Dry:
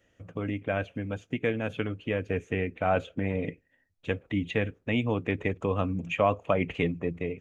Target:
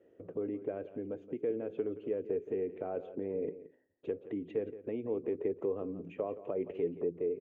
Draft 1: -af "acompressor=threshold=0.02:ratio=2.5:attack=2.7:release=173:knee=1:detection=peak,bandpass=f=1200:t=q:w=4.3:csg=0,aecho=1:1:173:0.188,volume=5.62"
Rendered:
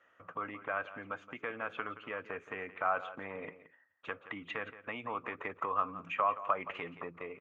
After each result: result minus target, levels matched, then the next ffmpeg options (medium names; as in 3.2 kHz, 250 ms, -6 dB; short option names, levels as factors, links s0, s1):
1 kHz band +17.0 dB; compression: peak gain reduction -5.5 dB
-af "acompressor=threshold=0.02:ratio=2.5:attack=2.7:release=173:knee=1:detection=peak,bandpass=f=400:t=q:w=4.3:csg=0,aecho=1:1:173:0.188,volume=5.62"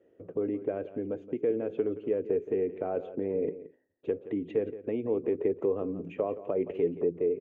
compression: peak gain reduction -5.5 dB
-af "acompressor=threshold=0.00668:ratio=2.5:attack=2.7:release=173:knee=1:detection=peak,bandpass=f=400:t=q:w=4.3:csg=0,aecho=1:1:173:0.188,volume=5.62"